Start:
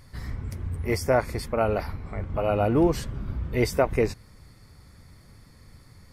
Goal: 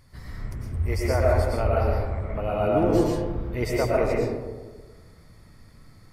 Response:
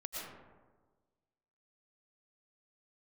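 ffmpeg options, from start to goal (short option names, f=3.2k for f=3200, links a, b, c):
-filter_complex "[0:a]asettb=1/sr,asplit=3[a][b][c];[a]atrim=end=0.744[d];[b]atrim=start=0.74:end=1.94,asetpts=PTS-STARTPTS,afade=t=in:d=0.004:c=qsin,afade=t=out:st=1.196:d=0.004:c=qsin,lowshelf=f=110:t=q:w=3:g=8[e];[c]atrim=start=1.936[f];[d][e]acrossfade=d=0.004:c1=hsin:c2=qsin[g];[g][f]acrossfade=d=0.004:c1=qsin:c2=hsin[h];[1:a]atrim=start_sample=2205[i];[h][i]afir=irnorm=-1:irlink=0"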